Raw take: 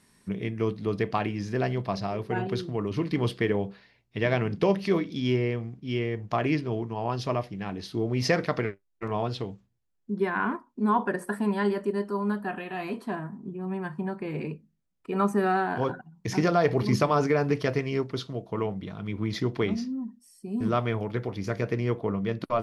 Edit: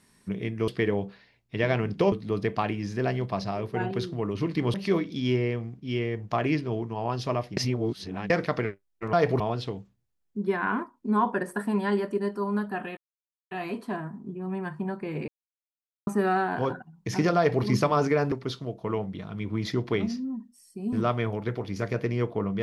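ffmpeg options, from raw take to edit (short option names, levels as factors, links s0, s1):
-filter_complex "[0:a]asplit=12[s0][s1][s2][s3][s4][s5][s6][s7][s8][s9][s10][s11];[s0]atrim=end=0.682[s12];[s1]atrim=start=3.298:end=4.742[s13];[s2]atrim=start=0.678:end=3.302[s14];[s3]atrim=start=4.738:end=7.572[s15];[s4]atrim=start=7.568:end=8.302,asetpts=PTS-STARTPTS,areverse[s16];[s5]atrim=start=8.298:end=9.132[s17];[s6]atrim=start=16.548:end=16.822[s18];[s7]atrim=start=9.128:end=12.7,asetpts=PTS-STARTPTS,afade=t=out:st=3.568:d=0.004:c=hsin,apad=pad_dur=0.54[s19];[s8]atrim=start=12.7:end=14.47,asetpts=PTS-STARTPTS,afade=t=in:d=0.004:c=hsin,afade=t=out:st=1.766:d=0.004:c=hsin[s20];[s9]atrim=start=14.47:end=15.26,asetpts=PTS-STARTPTS,volume=0[s21];[s10]atrim=start=15.26:end=17.512,asetpts=PTS-STARTPTS,afade=t=in:d=0.004:c=hsin[s22];[s11]atrim=start=17.998[s23];[s12][s13]acrossfade=d=0.004:c1=hsin:c2=hsin[s24];[s24][s14]acrossfade=d=0.004:c1=hsin:c2=hsin[s25];[s25][s15]acrossfade=d=0.004:c1=hsin:c2=hsin[s26];[s26][s16]acrossfade=d=0.004:c1=hsin:c2=hsin[s27];[s27][s17]acrossfade=d=0.004:c1=hsin:c2=hsin[s28];[s28][s18]acrossfade=d=0.004:c1=hsin:c2=hsin[s29];[s19][s20][s21][s22]concat=n=4:v=0:a=1[s30];[s29][s30]acrossfade=d=0.004:c1=hsin:c2=hsin[s31];[s31][s23]acrossfade=d=0.004:c1=hsin:c2=hsin"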